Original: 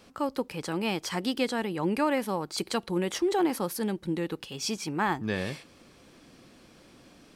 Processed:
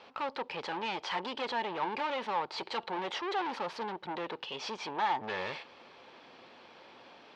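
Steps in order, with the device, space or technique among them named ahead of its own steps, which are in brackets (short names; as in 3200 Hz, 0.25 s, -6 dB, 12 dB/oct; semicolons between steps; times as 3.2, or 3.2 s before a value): guitar amplifier (tube stage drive 37 dB, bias 0.6; tone controls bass -11 dB, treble +8 dB; speaker cabinet 110–3500 Hz, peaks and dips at 140 Hz -5 dB, 200 Hz -5 dB, 300 Hz -8 dB, 890 Hz +9 dB); gain +6 dB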